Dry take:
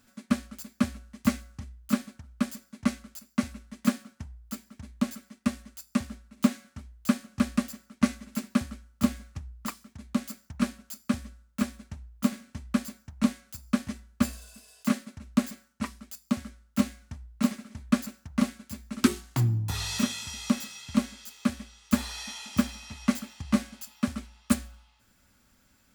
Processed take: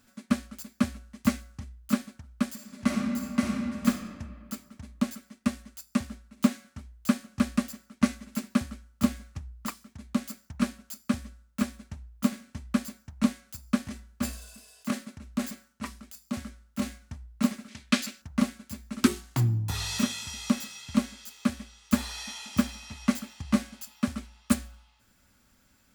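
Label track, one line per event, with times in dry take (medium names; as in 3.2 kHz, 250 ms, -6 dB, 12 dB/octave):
2.530000	3.870000	reverb throw, RT60 2 s, DRR -1.5 dB
13.850000	16.980000	transient shaper attack -7 dB, sustain +2 dB
17.680000	18.220000	frequency weighting D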